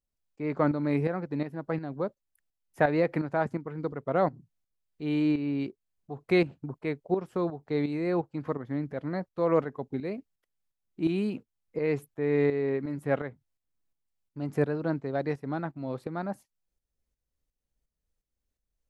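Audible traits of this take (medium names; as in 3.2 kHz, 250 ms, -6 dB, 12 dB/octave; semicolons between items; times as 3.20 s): tremolo saw up 2.8 Hz, depth 65%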